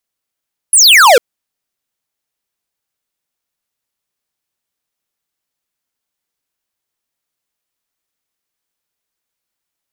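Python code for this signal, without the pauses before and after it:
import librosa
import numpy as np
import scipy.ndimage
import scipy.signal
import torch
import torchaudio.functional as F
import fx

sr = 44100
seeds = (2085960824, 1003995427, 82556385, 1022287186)

y = fx.laser_zap(sr, level_db=-5.0, start_hz=11000.0, end_hz=440.0, length_s=0.45, wave='square')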